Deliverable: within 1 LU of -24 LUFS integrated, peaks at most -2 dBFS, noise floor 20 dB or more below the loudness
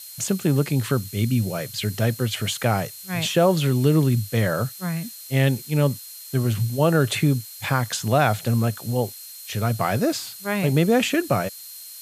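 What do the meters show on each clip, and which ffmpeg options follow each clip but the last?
steady tone 4200 Hz; tone level -45 dBFS; noise floor -40 dBFS; noise floor target -43 dBFS; loudness -22.5 LUFS; peak -4.5 dBFS; loudness target -24.0 LUFS
-> -af "bandreject=f=4.2k:w=30"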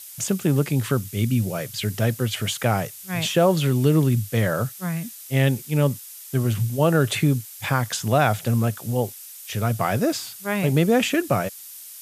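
steady tone none; noise floor -41 dBFS; noise floor target -43 dBFS
-> -af "afftdn=nr=6:nf=-41"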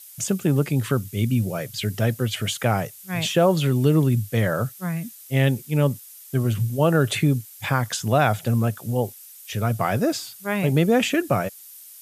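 noise floor -45 dBFS; loudness -23.0 LUFS; peak -5.0 dBFS; loudness target -24.0 LUFS
-> -af "volume=-1dB"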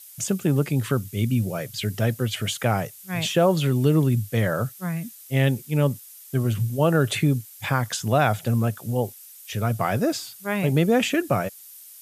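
loudness -24.0 LUFS; peak -6.0 dBFS; noise floor -46 dBFS

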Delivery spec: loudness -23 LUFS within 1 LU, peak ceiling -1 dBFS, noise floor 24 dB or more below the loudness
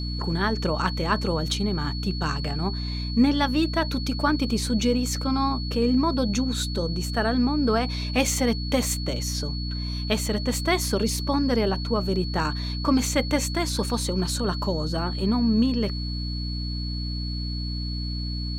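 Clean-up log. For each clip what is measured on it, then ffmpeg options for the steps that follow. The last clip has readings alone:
hum 60 Hz; harmonics up to 300 Hz; hum level -27 dBFS; steady tone 4400 Hz; tone level -35 dBFS; loudness -25.0 LUFS; peak -9.0 dBFS; loudness target -23.0 LUFS
-> -af "bandreject=f=60:t=h:w=4,bandreject=f=120:t=h:w=4,bandreject=f=180:t=h:w=4,bandreject=f=240:t=h:w=4,bandreject=f=300:t=h:w=4"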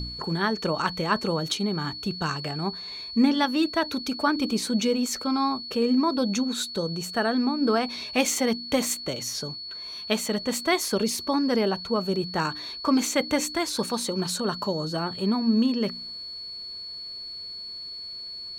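hum none; steady tone 4400 Hz; tone level -35 dBFS
-> -af "bandreject=f=4.4k:w=30"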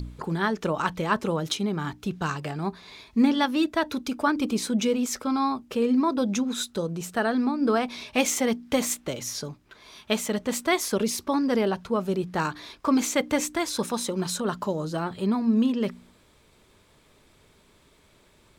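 steady tone none; loudness -26.5 LUFS; peak -10.0 dBFS; loudness target -23.0 LUFS
-> -af "volume=3.5dB"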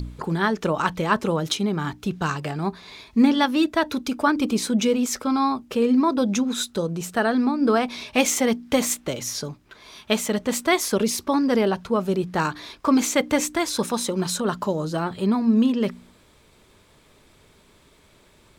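loudness -23.0 LUFS; peak -6.5 dBFS; noise floor -56 dBFS

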